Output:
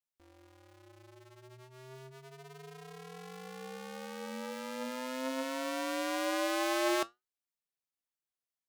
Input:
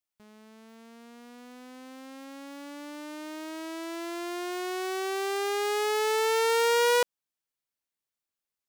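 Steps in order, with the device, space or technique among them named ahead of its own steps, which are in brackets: alien voice (ring modulator 130 Hz; flange 1.5 Hz, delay 7.2 ms, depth 1.9 ms, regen +74%)

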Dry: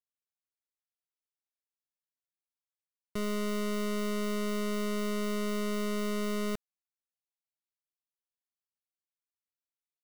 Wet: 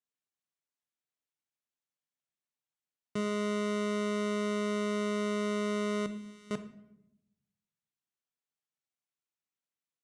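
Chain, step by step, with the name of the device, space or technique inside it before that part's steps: car door speaker (cabinet simulation 110–8500 Hz, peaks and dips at 140 Hz +6 dB, 250 Hz +4 dB, 4.8 kHz -5 dB); 6.06–6.51 s: amplifier tone stack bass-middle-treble 6-0-2; simulated room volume 240 m³, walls mixed, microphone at 0.39 m

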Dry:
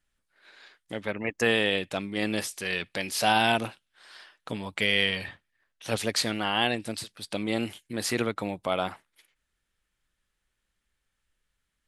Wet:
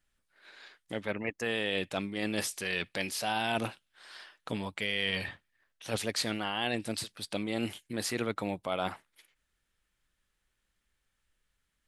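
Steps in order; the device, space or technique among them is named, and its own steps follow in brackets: compression on the reversed sound (reverse; compression 5:1, threshold -28 dBFS, peak gain reduction 10 dB; reverse)

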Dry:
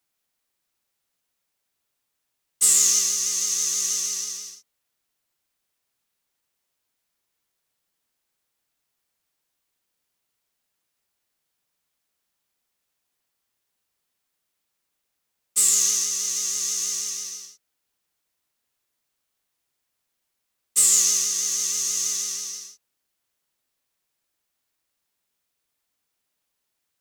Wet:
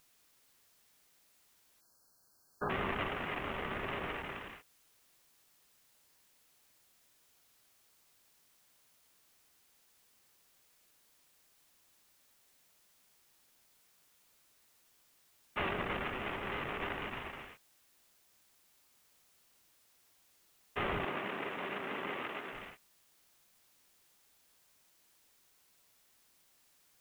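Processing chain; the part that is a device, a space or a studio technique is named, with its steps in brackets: army field radio (band-pass 330–3000 Hz; CVSD coder 16 kbps; white noise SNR 24 dB); 1.81–2.70 s: spectral selection erased 1.7–4.1 kHz; 21.05–22.53 s: Chebyshev high-pass 230 Hz, order 2; trim +8.5 dB

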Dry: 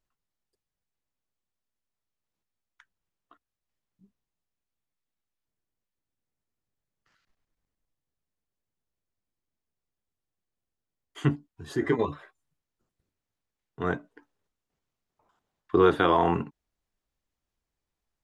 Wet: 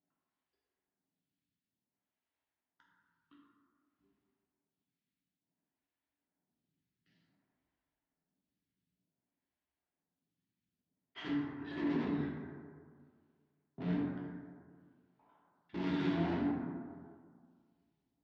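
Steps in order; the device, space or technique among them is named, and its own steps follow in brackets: vibe pedal into a guitar amplifier (lamp-driven phase shifter 0.55 Hz; valve stage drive 43 dB, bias 0.55; cabinet simulation 94–4300 Hz, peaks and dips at 160 Hz +4 dB, 260 Hz +9 dB, 480 Hz -8 dB, 1.2 kHz -7 dB); plate-style reverb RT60 1.9 s, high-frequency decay 0.35×, DRR -4.5 dB; trim +1.5 dB

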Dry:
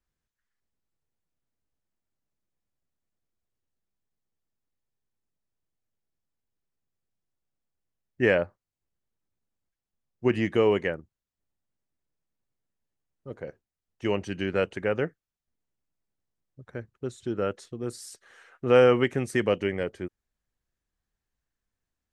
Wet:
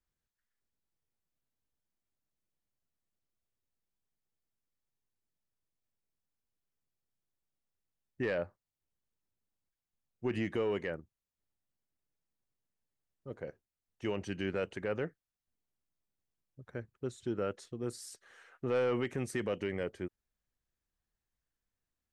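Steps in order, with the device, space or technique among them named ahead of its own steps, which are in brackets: soft clipper into limiter (saturation -13 dBFS, distortion -18 dB; peak limiter -20.5 dBFS, peak gain reduction 7 dB); trim -4.5 dB

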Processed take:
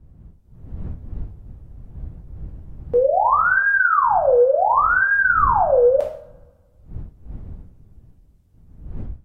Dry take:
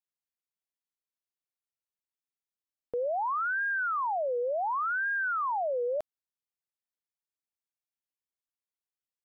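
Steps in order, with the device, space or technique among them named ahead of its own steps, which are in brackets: two-slope reverb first 0.52 s, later 1.7 s, from -27 dB, DRR -1.5 dB; smartphone video outdoors (wind noise 80 Hz -44 dBFS; level rider gain up to 5.5 dB; trim +4 dB; AAC 48 kbps 44.1 kHz)

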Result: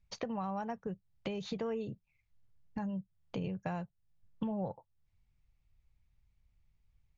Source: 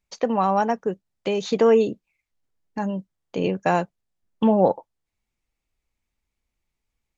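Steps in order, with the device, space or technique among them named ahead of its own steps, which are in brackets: jukebox (low-pass 5.2 kHz 12 dB/octave; resonant low shelf 190 Hz +13 dB, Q 1.5; compression 4:1, threshold -35 dBFS, peak gain reduction 19 dB); trim -3 dB

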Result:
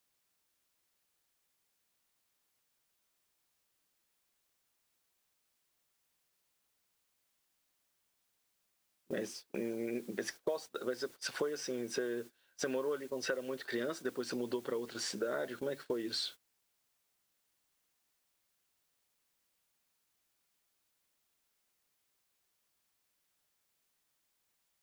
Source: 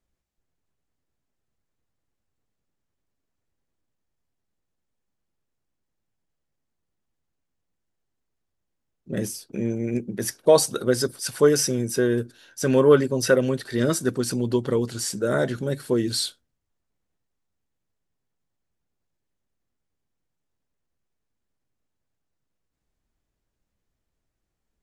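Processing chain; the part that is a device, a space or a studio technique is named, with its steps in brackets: baby monitor (band-pass 380–3900 Hz; compression 12:1, threshold -33 dBFS, peak gain reduction 22 dB; white noise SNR 17 dB; gate -46 dBFS, range -19 dB)

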